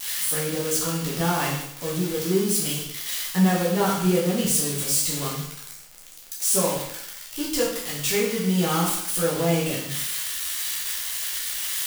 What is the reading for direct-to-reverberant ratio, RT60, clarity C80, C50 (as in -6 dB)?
-6.0 dB, 0.75 s, 6.0 dB, 3.0 dB